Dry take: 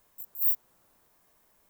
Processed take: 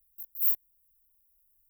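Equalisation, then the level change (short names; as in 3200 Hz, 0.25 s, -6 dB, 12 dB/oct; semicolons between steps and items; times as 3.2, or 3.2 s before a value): inverse Chebyshev band-stop 320–2600 Hz, stop band 80 dB; 0.0 dB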